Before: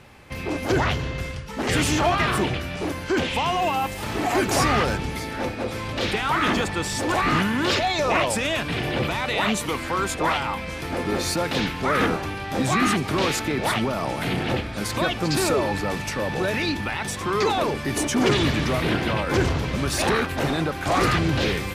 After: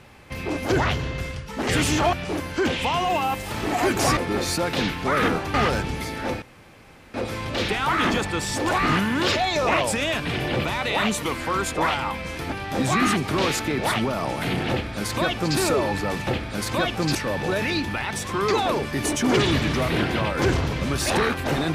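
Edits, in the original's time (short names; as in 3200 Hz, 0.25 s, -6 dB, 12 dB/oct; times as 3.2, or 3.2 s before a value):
2.13–2.65 cut
5.57 insert room tone 0.72 s
10.95–12.32 move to 4.69
14.5–15.38 copy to 16.07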